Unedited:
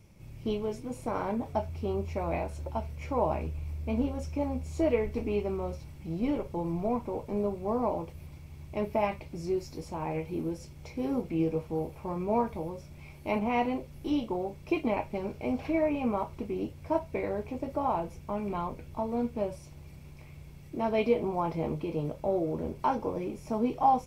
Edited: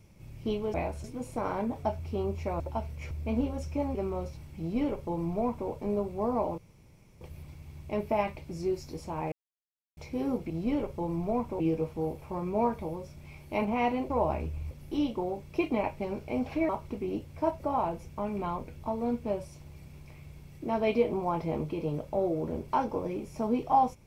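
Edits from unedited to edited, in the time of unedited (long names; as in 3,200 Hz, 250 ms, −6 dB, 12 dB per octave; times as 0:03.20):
0:02.30–0:02.60: move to 0:00.74
0:03.11–0:03.72: move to 0:13.84
0:04.56–0:05.42: remove
0:06.06–0:07.16: duplicate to 0:11.34
0:08.05: splice in room tone 0.63 s
0:10.16–0:10.81: silence
0:15.82–0:16.17: remove
0:17.08–0:17.71: remove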